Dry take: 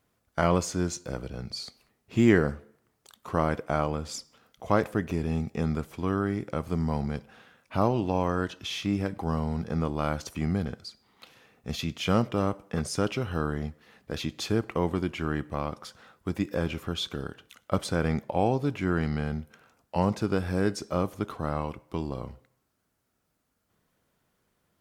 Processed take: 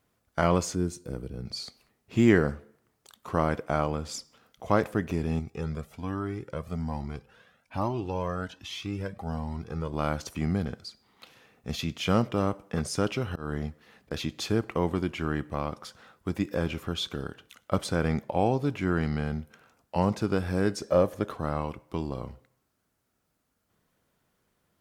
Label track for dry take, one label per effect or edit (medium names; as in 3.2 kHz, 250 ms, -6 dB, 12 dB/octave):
0.750000	1.460000	time-frequency box 500–7900 Hz -9 dB
5.390000	9.930000	Shepard-style flanger rising 1.2 Hz
13.290000	14.110000	slow attack 183 ms
20.820000	21.330000	small resonant body resonances 550/1700 Hz, height 11 dB, ringing for 25 ms